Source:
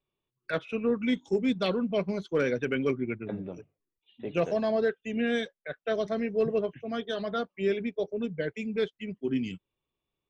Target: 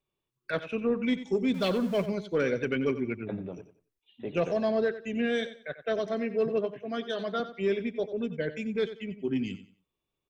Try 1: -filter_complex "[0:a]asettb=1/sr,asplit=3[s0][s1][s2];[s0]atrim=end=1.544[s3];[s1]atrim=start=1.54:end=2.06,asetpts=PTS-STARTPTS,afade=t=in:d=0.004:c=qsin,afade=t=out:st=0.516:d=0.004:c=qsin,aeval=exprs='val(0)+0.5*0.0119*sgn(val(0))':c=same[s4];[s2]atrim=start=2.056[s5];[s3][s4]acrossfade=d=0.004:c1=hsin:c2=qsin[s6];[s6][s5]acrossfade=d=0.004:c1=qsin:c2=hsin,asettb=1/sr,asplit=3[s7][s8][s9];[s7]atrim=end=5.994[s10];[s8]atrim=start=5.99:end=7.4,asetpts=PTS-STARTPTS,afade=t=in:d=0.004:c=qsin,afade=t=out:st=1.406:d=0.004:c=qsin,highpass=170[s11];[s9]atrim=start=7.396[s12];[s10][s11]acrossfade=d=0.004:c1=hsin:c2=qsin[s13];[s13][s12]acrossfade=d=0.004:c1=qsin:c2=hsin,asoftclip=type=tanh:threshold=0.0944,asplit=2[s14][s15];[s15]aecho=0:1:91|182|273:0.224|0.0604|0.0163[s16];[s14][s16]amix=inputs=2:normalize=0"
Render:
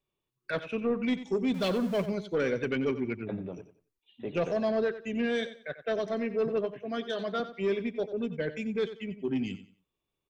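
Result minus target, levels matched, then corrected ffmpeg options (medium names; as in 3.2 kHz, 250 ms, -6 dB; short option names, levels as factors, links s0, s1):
saturation: distortion +11 dB
-filter_complex "[0:a]asettb=1/sr,asplit=3[s0][s1][s2];[s0]atrim=end=1.544[s3];[s1]atrim=start=1.54:end=2.06,asetpts=PTS-STARTPTS,afade=t=in:d=0.004:c=qsin,afade=t=out:st=0.516:d=0.004:c=qsin,aeval=exprs='val(0)+0.5*0.0119*sgn(val(0))':c=same[s4];[s2]atrim=start=2.056[s5];[s3][s4]acrossfade=d=0.004:c1=hsin:c2=qsin[s6];[s6][s5]acrossfade=d=0.004:c1=qsin:c2=hsin,asettb=1/sr,asplit=3[s7][s8][s9];[s7]atrim=end=5.994[s10];[s8]atrim=start=5.99:end=7.4,asetpts=PTS-STARTPTS,afade=t=in:d=0.004:c=qsin,afade=t=out:st=1.406:d=0.004:c=qsin,highpass=170[s11];[s9]atrim=start=7.396[s12];[s10][s11]acrossfade=d=0.004:c1=hsin:c2=qsin[s13];[s13][s12]acrossfade=d=0.004:c1=qsin:c2=hsin,asoftclip=type=tanh:threshold=0.2,asplit=2[s14][s15];[s15]aecho=0:1:91|182|273:0.224|0.0604|0.0163[s16];[s14][s16]amix=inputs=2:normalize=0"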